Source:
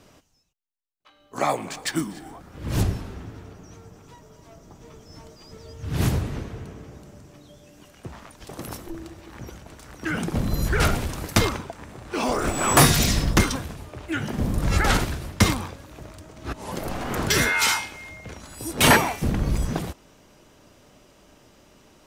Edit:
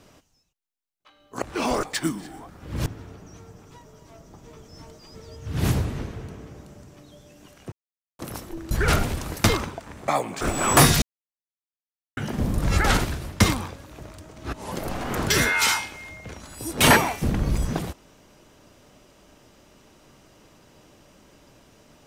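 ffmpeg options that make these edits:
-filter_complex "[0:a]asplit=11[s0][s1][s2][s3][s4][s5][s6][s7][s8][s9][s10];[s0]atrim=end=1.422[s11];[s1]atrim=start=11.998:end=12.412[s12];[s2]atrim=start=1.748:end=2.782[s13];[s3]atrim=start=3.228:end=8.09,asetpts=PTS-STARTPTS,afade=t=out:st=4.858:d=0.004:c=hsin[s14];[s4]atrim=start=8.09:end=8.56,asetpts=PTS-STARTPTS,volume=0[s15];[s5]atrim=start=8.56:end=9.082,asetpts=PTS-STARTPTS,afade=t=in:d=0.004:c=hsin[s16];[s6]atrim=start=10.628:end=12.002[s17];[s7]atrim=start=1.418:end=1.752[s18];[s8]atrim=start=12.408:end=13.02,asetpts=PTS-STARTPTS,afade=t=out:st=0.608:d=0.004:c=hsin[s19];[s9]atrim=start=13.02:end=14.17,asetpts=PTS-STARTPTS,volume=0[s20];[s10]atrim=start=14.17,asetpts=PTS-STARTPTS,afade=t=in:d=0.004:c=hsin[s21];[s11][s12]acrossfade=d=0.004:c1=hsin:c2=hsin[s22];[s22][s13]acrossfade=d=0.004:c1=hsin:c2=hsin[s23];[s14][s15][s16]concat=n=3:v=0:a=1[s24];[s23][s24]acrossfade=d=0.004:c1=hsin:c2=hsin[s25];[s25][s17]acrossfade=d=0.004:c1=hsin:c2=hsin[s26];[s26][s18]acrossfade=d=0.004:c1=hsin:c2=hsin[s27];[s19][s20][s21]concat=n=3:v=0:a=1[s28];[s27][s28]acrossfade=d=0.004:c1=hsin:c2=hsin"

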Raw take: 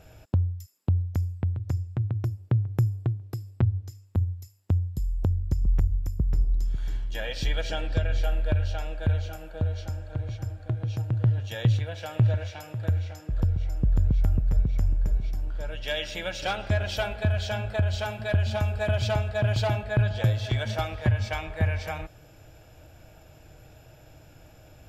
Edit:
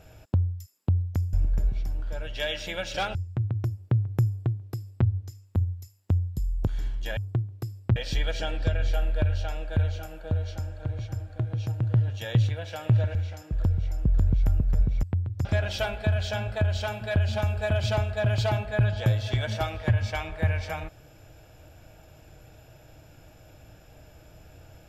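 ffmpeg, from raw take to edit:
-filter_complex "[0:a]asplit=9[s0][s1][s2][s3][s4][s5][s6][s7][s8];[s0]atrim=end=1.332[s9];[s1]atrim=start=14.808:end=16.632[s10];[s2]atrim=start=1.748:end=5.272[s11];[s3]atrim=start=6.758:end=7.262[s12];[s4]atrim=start=2.878:end=3.672[s13];[s5]atrim=start=7.258:end=12.452[s14];[s6]atrim=start=12.928:end=14.812[s15];[s7]atrim=start=1.328:end=1.752[s16];[s8]atrim=start=16.628[s17];[s9][s10]acrossfade=d=0.004:c1=hsin:c2=hsin[s18];[s18][s11]acrossfade=d=0.004:c1=hsin:c2=hsin[s19];[s19][s12]acrossfade=d=0.004:c1=hsin:c2=hsin[s20];[s20][s13]acrossfade=d=0.004:c1=hsin:c2=hsin[s21];[s21][s14]acrossfade=d=0.004:c1=hsin:c2=hsin[s22];[s22][s15]acrossfade=d=0.004:c1=hsin:c2=hsin[s23];[s23][s16]acrossfade=d=0.004:c1=hsin:c2=hsin[s24];[s24][s17]acrossfade=d=0.004:c1=hsin:c2=hsin"

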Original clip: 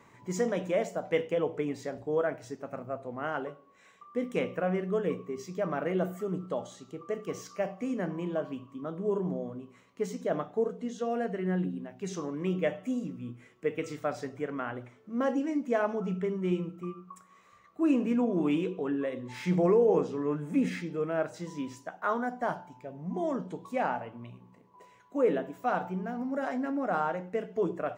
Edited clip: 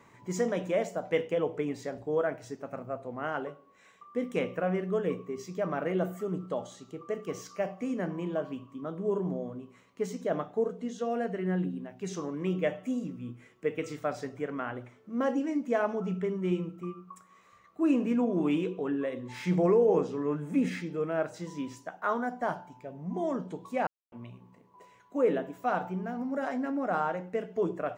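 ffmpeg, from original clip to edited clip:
-filter_complex "[0:a]asplit=3[s0][s1][s2];[s0]atrim=end=23.87,asetpts=PTS-STARTPTS,afade=t=out:st=23.866:d=0.004:c=hsin[s3];[s1]atrim=start=23.87:end=24.12,asetpts=PTS-STARTPTS,volume=0[s4];[s2]atrim=start=24.12,asetpts=PTS-STARTPTS,afade=t=in:d=0.004:c=hsin[s5];[s3][s4][s5]concat=n=3:v=0:a=1"

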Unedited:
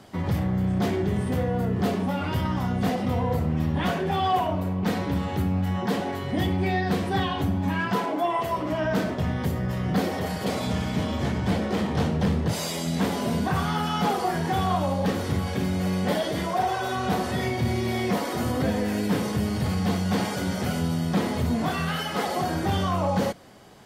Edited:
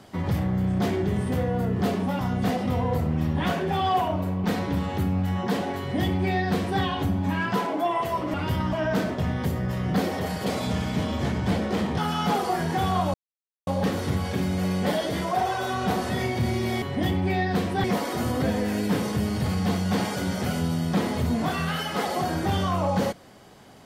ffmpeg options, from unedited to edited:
-filter_complex "[0:a]asplit=8[s0][s1][s2][s3][s4][s5][s6][s7];[s0]atrim=end=2.192[s8];[s1]atrim=start=2.578:end=8.732[s9];[s2]atrim=start=2.188:end=2.582[s10];[s3]atrim=start=8.728:end=11.982[s11];[s4]atrim=start=13.728:end=14.89,asetpts=PTS-STARTPTS,afade=t=out:st=1.158:d=0.004:c=hsin,apad=pad_dur=0.53[s12];[s5]atrim=start=14.89:end=18.042,asetpts=PTS-STARTPTS,afade=t=in:d=0.004:c=hsin[s13];[s6]atrim=start=6.178:end=7.202[s14];[s7]atrim=start=18.038[s15];[s8][s9]acrossfade=d=0.004:c1=hsin:c2=hsin[s16];[s16][s10]acrossfade=d=0.004:c1=hsin:c2=hsin[s17];[s17][s11]acrossfade=d=0.004:c1=hsin:c2=hsin[s18];[s12][s13]concat=n=2:v=0:a=1[s19];[s18][s19]acrossfade=d=0.004:c1=hsin:c2=hsin[s20];[s20][s14]acrossfade=d=0.004:c1=hsin:c2=hsin[s21];[s21][s15]acrossfade=d=0.004:c1=hsin:c2=hsin"

